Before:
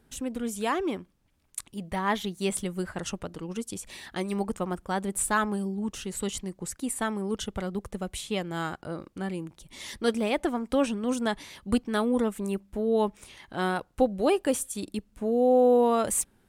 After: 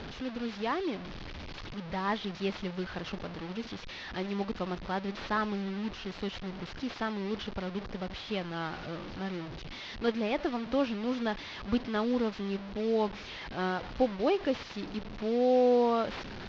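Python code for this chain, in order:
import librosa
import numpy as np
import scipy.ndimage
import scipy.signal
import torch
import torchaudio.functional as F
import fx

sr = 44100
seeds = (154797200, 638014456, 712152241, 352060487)

y = fx.delta_mod(x, sr, bps=32000, step_db=-31.5)
y = scipy.signal.sosfilt(scipy.signal.butter(4, 4700.0, 'lowpass', fs=sr, output='sos'), y)
y = y * librosa.db_to_amplitude(-4.0)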